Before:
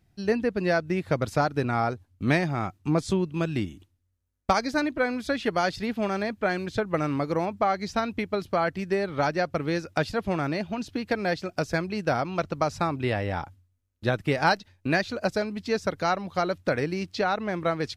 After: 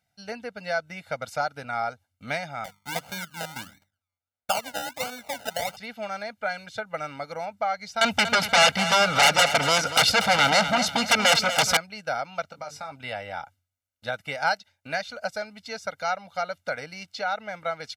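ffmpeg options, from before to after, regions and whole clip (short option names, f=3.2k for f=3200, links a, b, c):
-filter_complex "[0:a]asettb=1/sr,asplit=3[a][b][c];[a]atrim=end=2.644[d];[b]atrim=start=2.64:end=5.77,asetpts=PTS-STARTPTS,afade=t=in:d=0.004:c=qsin,afade=t=out:st=3.126:d=0.004:c=qsin,aemphasis=mode=reproduction:type=cd,bandreject=f=50:t=h:w=6,bandreject=f=100:t=h:w=6,bandreject=f=150:t=h:w=6,bandreject=f=200:t=h:w=6,acrusher=samples=31:mix=1:aa=0.000001:lfo=1:lforange=18.6:lforate=1.5[e];[c]atrim=start=5.766[f];[d][e]acrossfade=d=0.004:c1=hsin:c2=qsin[g];[g][f]acrossfade=d=0.004:c1=qsin:c2=hsin,asettb=1/sr,asplit=3[h][i][j];[h]atrim=end=8.014[k];[i]atrim=start=8.01:end=11.77,asetpts=PTS-STARTPTS,afade=t=in:d=0.004:c=qsin,afade=t=out:st=3.756:d=0.004:c=qsin,aeval=exprs='0.299*sin(PI/2*6.31*val(0)/0.299)':c=same,aecho=1:1:238|476|714|952:0.282|0.0986|0.0345|0.0121,atrim=end_sample=165816[l];[j]atrim=start=11.766[m];[k][l]acrossfade=d=0.004:c1=hsin:c2=qsin[n];[n][m]acrossfade=d=0.004:c1=qsin:c2=hsin,asettb=1/sr,asplit=3[o][p][q];[o]atrim=end=12.484[r];[p]atrim=start=12.48:end=12.92,asetpts=PTS-STARTPTS,afade=t=in:d=0.004:c=qsin,afade=t=out:st=0.436:d=0.004:c=qsin,bandreject=f=50:t=h:w=6,bandreject=f=100:t=h:w=6,bandreject=f=150:t=h:w=6,bandreject=f=200:t=h:w=6,bandreject=f=250:t=h:w=6,bandreject=f=300:t=h:w=6,bandreject=f=350:t=h:w=6,bandreject=f=400:t=h:w=6,bandreject=f=450:t=h:w=6,acompressor=threshold=-28dB:ratio=5:attack=3.2:release=140:knee=1:detection=peak,asplit=2[s][t];[t]adelay=20,volume=-7.5dB[u];[s][u]amix=inputs=2:normalize=0,atrim=end_sample=19404[v];[q]atrim=start=12.916[w];[r][v]acrossfade=d=0.004:c1=hsin:c2=qsin[x];[x][w]acrossfade=d=0.004:c1=qsin:c2=hsin,highpass=f=830:p=1,aecho=1:1:1.4:0.94,volume=-3.5dB"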